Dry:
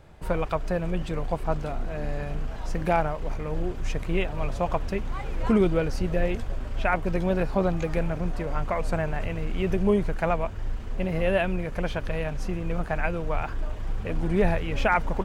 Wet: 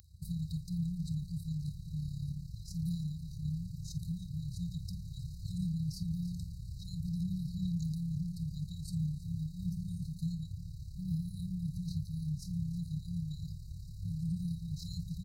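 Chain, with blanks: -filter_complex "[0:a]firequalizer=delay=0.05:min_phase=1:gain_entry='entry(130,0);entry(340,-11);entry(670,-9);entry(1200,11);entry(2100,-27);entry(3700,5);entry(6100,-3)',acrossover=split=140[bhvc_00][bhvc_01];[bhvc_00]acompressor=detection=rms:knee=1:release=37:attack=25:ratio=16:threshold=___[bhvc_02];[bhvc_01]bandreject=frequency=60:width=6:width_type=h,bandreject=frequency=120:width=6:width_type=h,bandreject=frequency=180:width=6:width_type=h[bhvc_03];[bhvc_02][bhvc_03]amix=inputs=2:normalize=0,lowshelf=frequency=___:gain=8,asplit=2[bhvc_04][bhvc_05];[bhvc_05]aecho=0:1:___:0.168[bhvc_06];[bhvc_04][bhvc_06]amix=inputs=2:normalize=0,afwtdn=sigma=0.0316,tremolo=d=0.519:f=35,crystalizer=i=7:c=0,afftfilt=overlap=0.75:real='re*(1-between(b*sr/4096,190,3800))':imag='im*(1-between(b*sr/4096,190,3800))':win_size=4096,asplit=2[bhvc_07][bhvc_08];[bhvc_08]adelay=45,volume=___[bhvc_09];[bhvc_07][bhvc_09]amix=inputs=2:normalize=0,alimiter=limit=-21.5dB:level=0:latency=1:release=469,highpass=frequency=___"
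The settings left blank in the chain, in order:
-35dB, 230, 323, -13.5dB, 99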